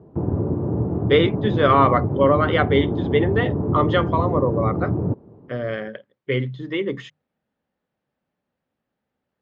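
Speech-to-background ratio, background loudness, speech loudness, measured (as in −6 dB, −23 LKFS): 2.5 dB, −24.0 LKFS, −21.5 LKFS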